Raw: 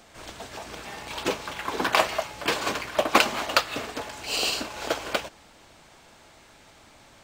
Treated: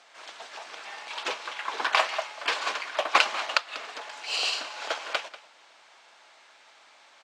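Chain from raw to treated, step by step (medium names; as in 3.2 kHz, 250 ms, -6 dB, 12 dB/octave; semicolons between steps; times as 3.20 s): 3.57–4.12 s: compression 6:1, threshold -30 dBFS, peak gain reduction 12 dB; band-pass 780–5600 Hz; on a send: delay 191 ms -17 dB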